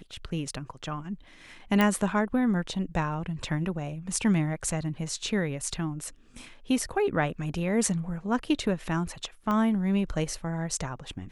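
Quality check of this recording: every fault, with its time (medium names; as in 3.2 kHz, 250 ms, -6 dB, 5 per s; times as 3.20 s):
1.81 s: pop -10 dBFS
9.51 s: pop -18 dBFS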